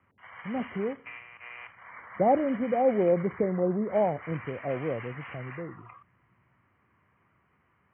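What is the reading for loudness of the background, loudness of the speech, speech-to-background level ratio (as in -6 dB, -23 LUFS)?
-44.5 LUFS, -28.5 LUFS, 16.0 dB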